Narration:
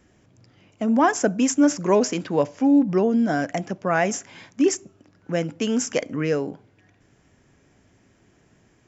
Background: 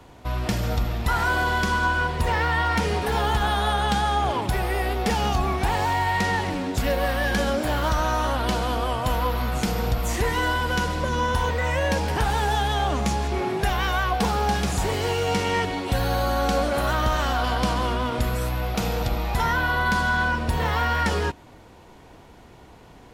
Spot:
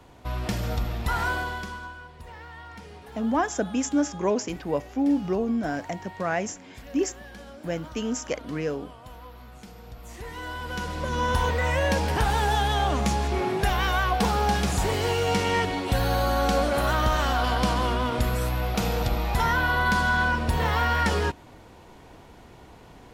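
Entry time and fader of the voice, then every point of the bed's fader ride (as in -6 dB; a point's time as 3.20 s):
2.35 s, -6.0 dB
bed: 1.27 s -3.5 dB
2.02 s -20.5 dB
9.84 s -20.5 dB
11.33 s -0.5 dB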